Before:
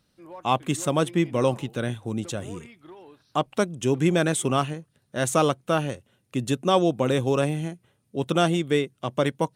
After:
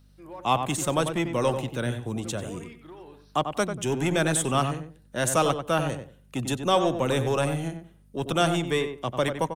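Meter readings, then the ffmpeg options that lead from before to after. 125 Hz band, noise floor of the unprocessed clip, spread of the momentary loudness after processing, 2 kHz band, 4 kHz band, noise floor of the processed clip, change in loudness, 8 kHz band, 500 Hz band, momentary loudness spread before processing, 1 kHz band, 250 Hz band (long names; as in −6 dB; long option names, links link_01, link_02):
−2.0 dB, −70 dBFS, 13 LU, +0.5 dB, +0.5 dB, −56 dBFS, −1.5 dB, +2.0 dB, −2.0 dB, 12 LU, 0.0 dB, −3.5 dB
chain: -filter_complex "[0:a]acrossover=split=120|520|2100[link_01][link_02][link_03][link_04];[link_02]asoftclip=type=tanh:threshold=-26.5dB[link_05];[link_01][link_05][link_03][link_04]amix=inputs=4:normalize=0,aeval=exprs='val(0)+0.00178*(sin(2*PI*50*n/s)+sin(2*PI*2*50*n/s)/2+sin(2*PI*3*50*n/s)/3+sin(2*PI*4*50*n/s)/4+sin(2*PI*5*50*n/s)/5)':channel_layout=same,highshelf=frequency=11000:gain=6.5,asplit=2[link_06][link_07];[link_07]adelay=94,lowpass=frequency=1800:poles=1,volume=-7dB,asplit=2[link_08][link_09];[link_09]adelay=94,lowpass=frequency=1800:poles=1,volume=0.21,asplit=2[link_10][link_11];[link_11]adelay=94,lowpass=frequency=1800:poles=1,volume=0.21[link_12];[link_06][link_08][link_10][link_12]amix=inputs=4:normalize=0"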